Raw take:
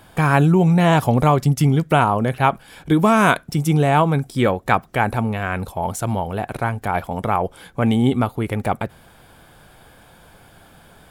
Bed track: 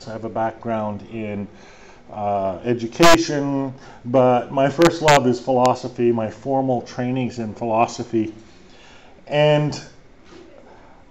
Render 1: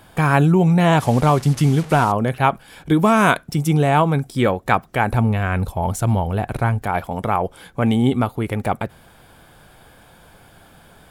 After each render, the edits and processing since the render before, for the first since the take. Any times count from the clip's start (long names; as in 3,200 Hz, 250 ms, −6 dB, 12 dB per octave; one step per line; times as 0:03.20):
0:01.00–0:02.12: linear delta modulator 64 kbit/s, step −29 dBFS
0:05.12–0:06.82: low-shelf EQ 120 Hz +12 dB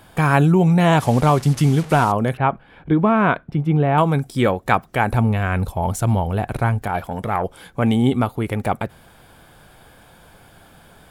0:02.37–0:03.98: high-frequency loss of the air 470 metres
0:06.88–0:07.44: saturating transformer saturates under 520 Hz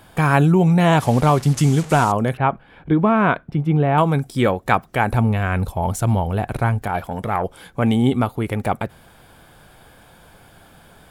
0:01.54–0:02.22: parametric band 7,200 Hz +7.5 dB 0.63 octaves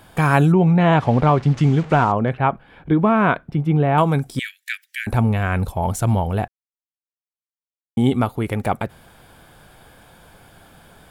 0:00.52–0:02.38: low-pass filter 2,900 Hz
0:04.39–0:05.07: Butterworth high-pass 1,700 Hz 72 dB per octave
0:06.48–0:07.97: silence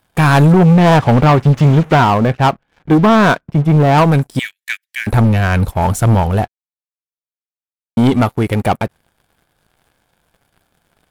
leveller curve on the samples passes 3
expander for the loud parts 1.5 to 1, over −30 dBFS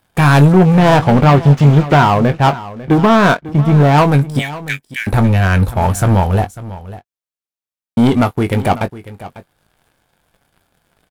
double-tracking delay 21 ms −10.5 dB
single-tap delay 547 ms −16.5 dB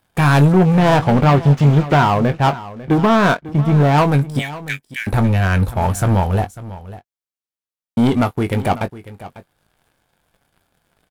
level −3.5 dB